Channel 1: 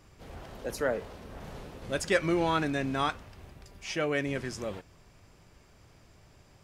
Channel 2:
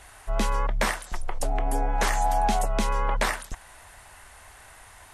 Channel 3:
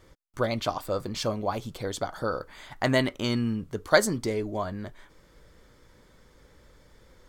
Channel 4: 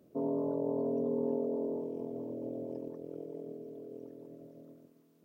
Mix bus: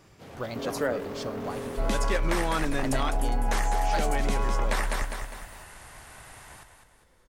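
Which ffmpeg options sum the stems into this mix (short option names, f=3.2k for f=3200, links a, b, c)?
-filter_complex "[0:a]highpass=f=89:w=0.5412,highpass=f=89:w=1.3066,volume=2.5dB[a];[1:a]adelay=1500,volume=0.5dB,asplit=2[b][c];[c]volume=-7dB[d];[2:a]volume=-8dB[e];[3:a]equalizer=f=15k:w=2.1:g=11.5,volume=35.5dB,asoftclip=hard,volume=-35.5dB,crystalizer=i=1:c=0,adelay=400,volume=1dB[f];[d]aecho=0:1:203|406|609|812|1015|1218:1|0.44|0.194|0.0852|0.0375|0.0165[g];[a][b][e][f][g]amix=inputs=5:normalize=0,aeval=exprs='0.282*(abs(mod(val(0)/0.282+3,4)-2)-1)':c=same,acompressor=threshold=-22dB:ratio=4"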